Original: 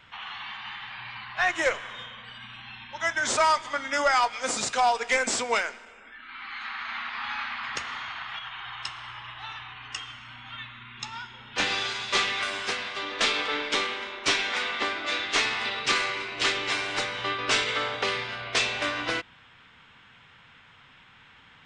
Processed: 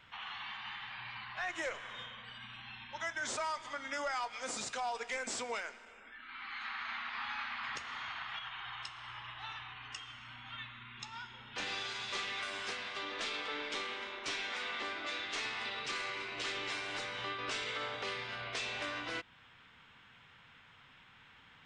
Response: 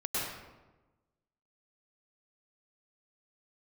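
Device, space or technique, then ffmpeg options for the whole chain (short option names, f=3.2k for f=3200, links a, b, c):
stacked limiters: -af "alimiter=limit=-18.5dB:level=0:latency=1:release=69,alimiter=limit=-23.5dB:level=0:latency=1:release=289,volume=-6dB"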